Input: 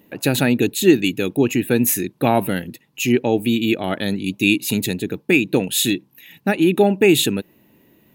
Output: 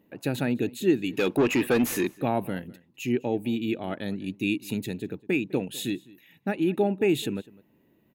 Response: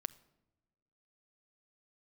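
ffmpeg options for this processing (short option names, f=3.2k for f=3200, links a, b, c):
-filter_complex "[0:a]asplit=3[a][b][c];[a]afade=t=out:st=1.12:d=0.02[d];[b]asplit=2[e][f];[f]highpass=f=720:p=1,volume=23dB,asoftclip=type=tanh:threshold=-3.5dB[g];[e][g]amix=inputs=2:normalize=0,lowpass=f=6k:p=1,volume=-6dB,afade=t=in:st=1.12:d=0.02,afade=t=out:st=2.14:d=0.02[h];[c]afade=t=in:st=2.14:d=0.02[i];[d][h][i]amix=inputs=3:normalize=0,highshelf=f=2.7k:g=-9,asplit=2[j][k];[k]adelay=204.1,volume=-22dB,highshelf=f=4k:g=-4.59[l];[j][l]amix=inputs=2:normalize=0,volume=-9dB"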